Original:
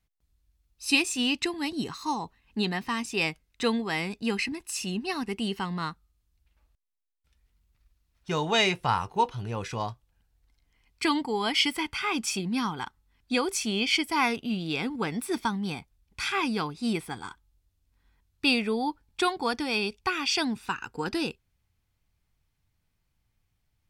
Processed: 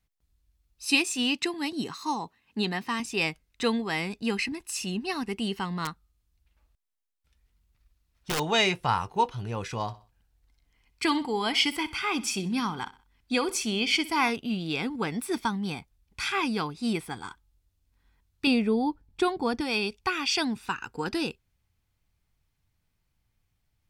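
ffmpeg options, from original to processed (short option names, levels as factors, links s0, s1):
-filter_complex "[0:a]asettb=1/sr,asplit=3[s0][s1][s2];[s0]atrim=end=0.854[s3];[s1]atrim=start=0.85:end=3,asetpts=PTS-STARTPTS,afade=t=in:d=0.004:c=qsin,afade=t=out:st=2.146:d=0.004:c=qsin,highpass=140[s4];[s2]atrim=start=2.996[s5];[s3][s4]acrossfade=d=0.004:c1=hsin:c2=qsin[s6];[s6][s5]acrossfade=d=0.004:c1=qsin:c2=hsin,asettb=1/sr,asplit=3[s7][s8][s9];[s7]atrim=end=5.854[s10];[s8]atrim=start=5.85:end=8.4,asetpts=PTS-STARTPTS,afade=t=in:d=0.004:c=qsin,afade=t=out:st=2.546:d=0.004:c=qsin,aeval=exprs='(mod(11.9*val(0)+1,2)-1)/11.9':c=same[s11];[s9]atrim=start=8.396[s12];[s10][s11]acrossfade=d=0.004:c1=hsin:c2=qsin[s13];[s13][s12]acrossfade=d=0.004:c1=qsin:c2=hsin,asettb=1/sr,asplit=3[s14][s15][s16];[s14]atrim=end=9.814[s17];[s15]atrim=start=9.81:end=14.3,asetpts=PTS-STARTPTS,afade=t=in:d=0.004:c=qsin,afade=t=out:st=4.486:d=0.004:c=qsin,aecho=1:1:63|126|189:0.141|0.0509|0.0183,atrim=end_sample=198009[s18];[s16]atrim=start=14.296[s19];[s17][s18]acrossfade=d=0.004:c1=hsin:c2=qsin[s20];[s20][s19]acrossfade=d=0.004:c1=qsin:c2=hsin,asettb=1/sr,asplit=3[s21][s22][s23];[s21]atrim=end=18.474[s24];[s22]atrim=start=18.47:end=19.61,asetpts=PTS-STARTPTS,afade=t=in:d=0.004:c=qsin,afade=t=out:st=1.136:d=0.004:c=qsin,tiltshelf=f=660:g=6[s25];[s23]atrim=start=19.606[s26];[s24][s25]acrossfade=d=0.004:c1=hsin:c2=qsin[s27];[s27][s26]acrossfade=d=0.004:c1=qsin:c2=hsin"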